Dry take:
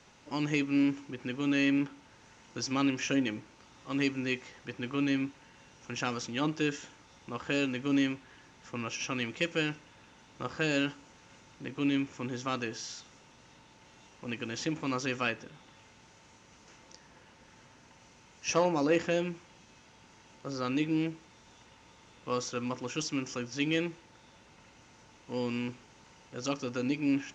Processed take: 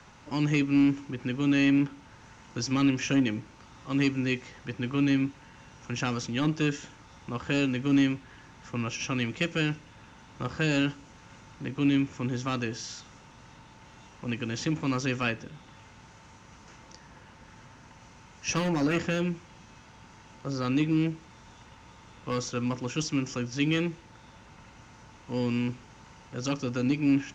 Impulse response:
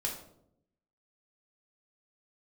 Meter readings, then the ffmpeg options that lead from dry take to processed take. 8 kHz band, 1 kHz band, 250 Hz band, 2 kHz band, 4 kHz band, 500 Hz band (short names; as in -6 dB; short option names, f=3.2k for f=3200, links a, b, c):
n/a, +0.5 dB, +5.0 dB, +2.0 dB, +2.0 dB, 0.0 dB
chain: -filter_complex "[0:a]acrossover=split=330|1000|1300[a][b][c][d];[a]lowshelf=f=260:g=9.5[e];[b]aeval=exprs='0.0251*(abs(mod(val(0)/0.0251+3,4)-2)-1)':c=same[f];[c]acompressor=mode=upward:threshold=-52dB:ratio=2.5[g];[e][f][g][d]amix=inputs=4:normalize=0,volume=2dB"